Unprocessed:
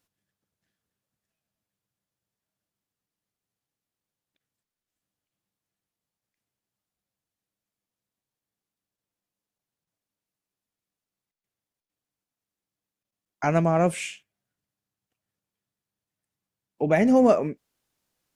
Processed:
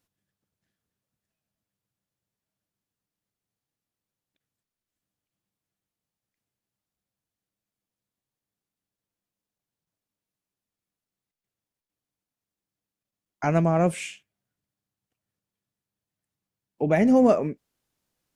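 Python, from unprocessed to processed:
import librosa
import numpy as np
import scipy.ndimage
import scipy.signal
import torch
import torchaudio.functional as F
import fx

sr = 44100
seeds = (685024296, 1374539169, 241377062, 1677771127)

y = fx.low_shelf(x, sr, hz=370.0, db=4.0)
y = F.gain(torch.from_numpy(y), -2.0).numpy()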